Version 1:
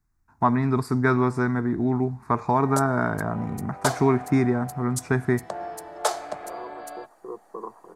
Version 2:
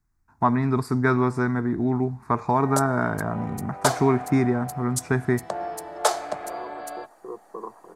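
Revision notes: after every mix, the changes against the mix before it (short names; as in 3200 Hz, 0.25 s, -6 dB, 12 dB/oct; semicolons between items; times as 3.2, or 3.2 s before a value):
background +3.0 dB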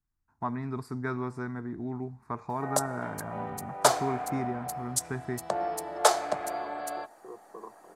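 first voice -12.0 dB; second voice -8.5 dB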